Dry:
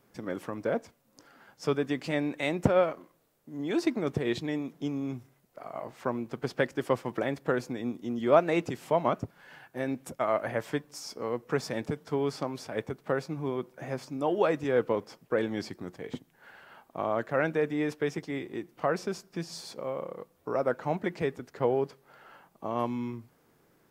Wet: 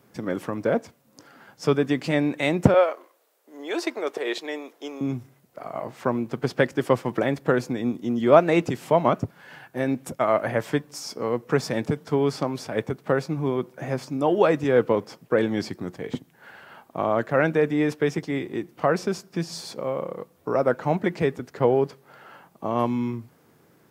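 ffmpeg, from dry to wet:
-filter_complex "[0:a]asettb=1/sr,asplit=3[a][b][c];[a]atrim=end=2.744[d];[b]atrim=start=2.74:end=5.01,asetpts=PTS-STARTPTS,afade=t=in:d=0.004:c=qsin,afade=t=out:st=2.266:d=0.004:c=qsin,highpass=f=420:w=0.5412,highpass=f=420:w=1.3066[e];[c]atrim=start=5.006[f];[d][e]acrossfade=d=0.004:c1=hsin:c2=qsin[g];[g][f]acrossfade=d=0.004:c1=qsin:c2=hsin,highpass=100,lowshelf=f=150:g=7,volume=6dB"

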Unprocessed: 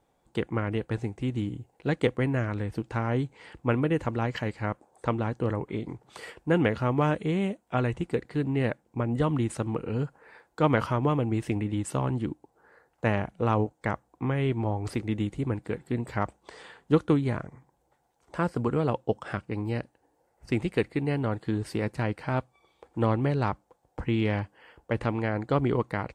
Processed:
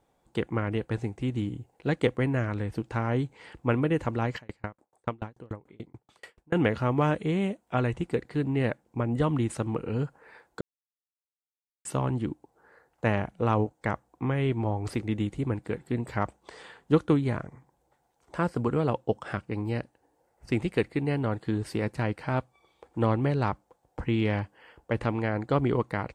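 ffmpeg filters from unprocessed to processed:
-filter_complex "[0:a]asplit=3[a][b][c];[a]afade=t=out:st=4.36:d=0.02[d];[b]aeval=exprs='val(0)*pow(10,-36*if(lt(mod(6.9*n/s,1),2*abs(6.9)/1000),1-mod(6.9*n/s,1)/(2*abs(6.9)/1000),(mod(6.9*n/s,1)-2*abs(6.9)/1000)/(1-2*abs(6.9)/1000))/20)':c=same,afade=t=in:st=4.36:d=0.02,afade=t=out:st=6.54:d=0.02[e];[c]afade=t=in:st=6.54:d=0.02[f];[d][e][f]amix=inputs=3:normalize=0,asplit=3[g][h][i];[g]atrim=end=10.61,asetpts=PTS-STARTPTS,afade=t=out:st=10.606:d=0.004:c=hsin[j];[h]atrim=start=10.61:end=11.85,asetpts=PTS-STARTPTS,volume=0[k];[i]atrim=start=11.85,asetpts=PTS-STARTPTS,afade=t=in:d=0.004:c=hsin[l];[j][k][l]concat=n=3:v=0:a=1"

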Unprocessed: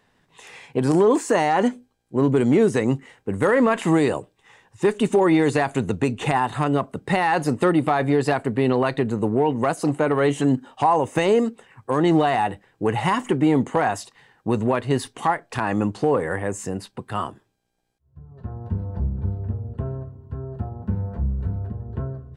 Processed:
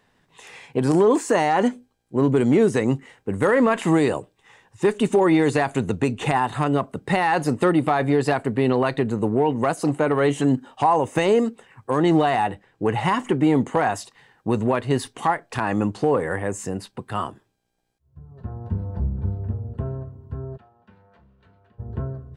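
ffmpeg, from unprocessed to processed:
-filter_complex "[0:a]asettb=1/sr,asplit=3[a][b][c];[a]atrim=end=12.464[d];[b]atrim=start=12.46:end=13.4,asetpts=PTS-STARTPTS,afade=t=in:d=0.004:c=qsin,afade=t=out:st=0.936:d=0.004:c=qsin,highshelf=f=9.1k:g=-7.5[e];[c]atrim=start=13.396[f];[d][e]acrossfade=d=0.004:c1=hsin:c2=qsin[g];[g][f]acrossfade=d=0.004:c1=qsin:c2=hsin,asplit=3[h][i][j];[h]afade=t=out:st=20.56:d=0.02[k];[i]bandpass=f=3.2k:t=q:w=1.3,afade=t=in:st=20.56:d=0.02,afade=t=out:st=21.78:d=0.02[l];[j]afade=t=in:st=21.78:d=0.02[m];[k][l][m]amix=inputs=3:normalize=0"

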